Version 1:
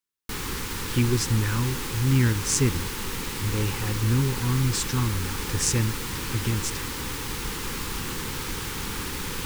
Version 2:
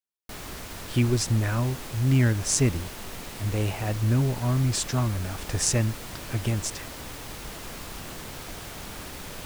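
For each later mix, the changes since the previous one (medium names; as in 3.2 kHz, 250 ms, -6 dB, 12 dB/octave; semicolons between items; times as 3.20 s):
background -7.5 dB; master: remove Butterworth band-stop 650 Hz, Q 2.1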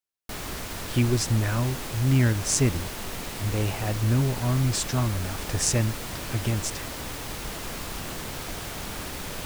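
background +4.0 dB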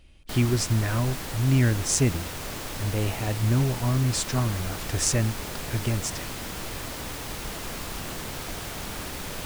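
speech: entry -0.60 s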